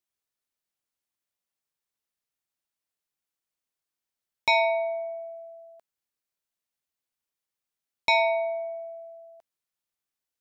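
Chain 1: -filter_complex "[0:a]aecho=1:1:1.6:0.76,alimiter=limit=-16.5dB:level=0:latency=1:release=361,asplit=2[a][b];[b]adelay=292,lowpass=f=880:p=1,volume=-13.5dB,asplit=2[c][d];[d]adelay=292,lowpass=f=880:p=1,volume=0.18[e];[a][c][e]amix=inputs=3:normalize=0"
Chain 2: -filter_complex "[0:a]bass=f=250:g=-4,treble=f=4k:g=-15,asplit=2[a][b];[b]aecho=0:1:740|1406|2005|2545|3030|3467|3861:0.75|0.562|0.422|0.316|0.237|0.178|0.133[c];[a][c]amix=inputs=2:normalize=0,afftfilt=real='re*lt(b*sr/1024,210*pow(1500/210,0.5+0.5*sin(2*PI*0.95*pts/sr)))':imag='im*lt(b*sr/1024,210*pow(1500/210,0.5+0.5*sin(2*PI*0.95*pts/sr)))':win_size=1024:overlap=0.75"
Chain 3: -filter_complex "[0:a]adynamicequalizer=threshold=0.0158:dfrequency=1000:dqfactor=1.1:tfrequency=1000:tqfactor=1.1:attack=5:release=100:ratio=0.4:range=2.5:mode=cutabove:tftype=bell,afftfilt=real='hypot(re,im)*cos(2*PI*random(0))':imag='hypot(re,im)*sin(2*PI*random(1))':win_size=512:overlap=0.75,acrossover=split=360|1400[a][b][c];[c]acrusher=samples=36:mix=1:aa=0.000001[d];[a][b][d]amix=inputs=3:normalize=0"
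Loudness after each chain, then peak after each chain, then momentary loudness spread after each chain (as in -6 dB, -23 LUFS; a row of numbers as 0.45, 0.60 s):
-26.5, -31.5, -35.5 LUFS; -16.5, -16.5, -15.5 dBFS; 19, 15, 19 LU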